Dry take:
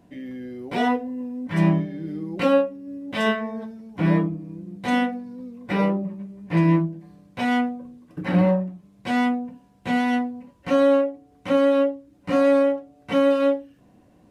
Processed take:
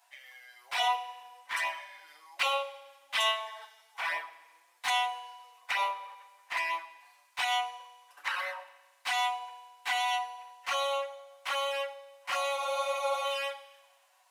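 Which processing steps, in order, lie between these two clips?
steep high-pass 810 Hz 36 dB/oct; envelope flanger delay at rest 8.6 ms, full sweep at -27.5 dBFS; high shelf 4200 Hz +8 dB; on a send at -13 dB: reverb RT60 1.3 s, pre-delay 3 ms; on the sum: spectral freeze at 12.59, 0.65 s; gain +2.5 dB

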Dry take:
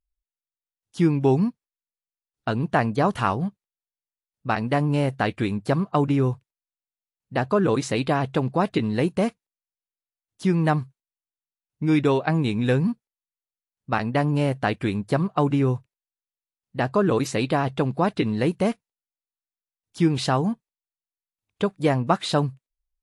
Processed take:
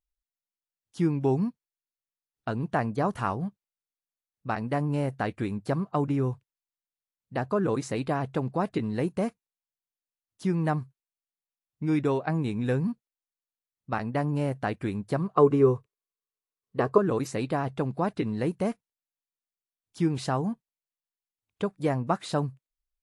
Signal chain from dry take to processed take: dynamic EQ 3300 Hz, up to -7 dB, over -45 dBFS, Q 1.2; 15.34–16.98 small resonant body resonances 430/1100 Hz, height 14 dB, ringing for 30 ms; gain -5.5 dB

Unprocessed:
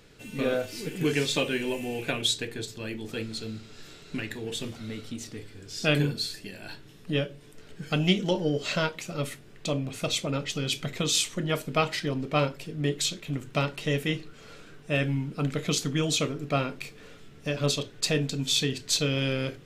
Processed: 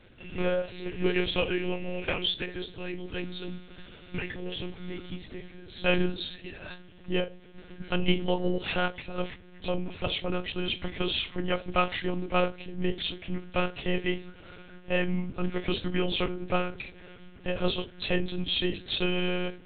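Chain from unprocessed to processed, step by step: nonlinear frequency compression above 2800 Hz 1.5:1; monotone LPC vocoder at 8 kHz 180 Hz

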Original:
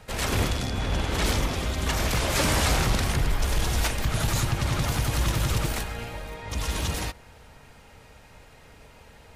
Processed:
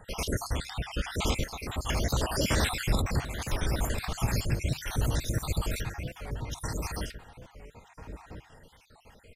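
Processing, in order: random spectral dropouts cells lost 63%; outdoor echo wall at 230 m, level -8 dB; on a send at -23.5 dB: reverb RT60 0.40 s, pre-delay 4 ms; on the sum: record warp 45 rpm, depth 160 cents; gain -1.5 dB

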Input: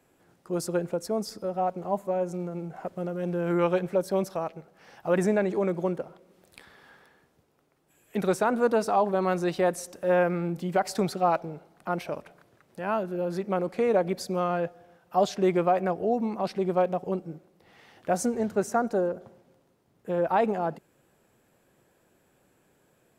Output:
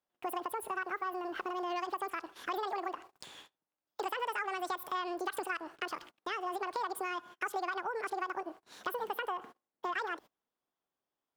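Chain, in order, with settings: gate -56 dBFS, range -29 dB; compressor 5:1, threshold -37 dBFS, peak gain reduction 17 dB; wide varispeed 2.04×; gain +2.5 dB

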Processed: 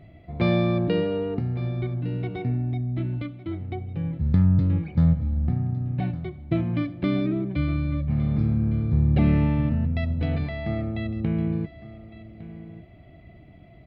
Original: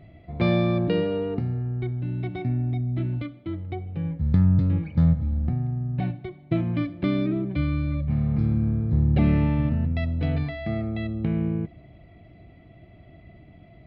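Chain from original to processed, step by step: echo 1.158 s -16 dB

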